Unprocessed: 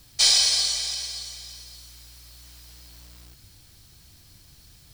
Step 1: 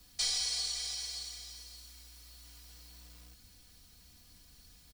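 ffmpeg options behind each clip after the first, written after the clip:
ffmpeg -i in.wav -filter_complex "[0:a]aecho=1:1:4.1:0.65,acrossover=split=150[link_01][link_02];[link_02]acompressor=threshold=-28dB:ratio=2[link_03];[link_01][link_03]amix=inputs=2:normalize=0,volume=-8dB" out.wav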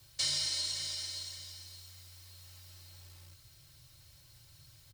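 ffmpeg -i in.wav -af "afreqshift=-150" out.wav

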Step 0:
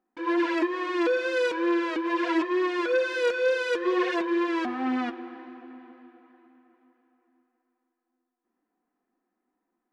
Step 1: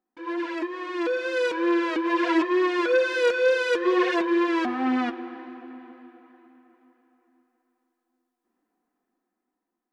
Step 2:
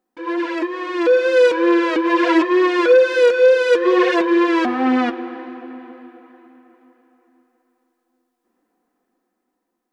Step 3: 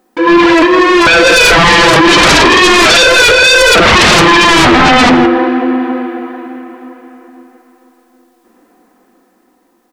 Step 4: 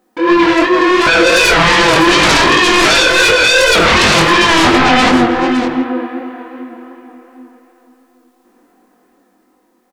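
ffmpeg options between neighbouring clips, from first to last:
ffmpeg -i in.wav -af "dynaudnorm=framelen=300:gausssize=9:maxgain=8.5dB,volume=-5dB" out.wav
ffmpeg -i in.wav -af "equalizer=frequency=510:width_type=o:width=0.26:gain=6.5,alimiter=limit=-11.5dB:level=0:latency=1:release=497,volume=7dB" out.wav
ffmpeg -i in.wav -af "aecho=1:1:46.65|163.3:0.282|0.316,aeval=exprs='0.75*sin(PI/2*7.08*val(0)/0.75)':channel_layout=same" out.wav
ffmpeg -i in.wav -af "aecho=1:1:560:0.282,flanger=delay=19.5:depth=5.4:speed=2.7,volume=-1dB" out.wav

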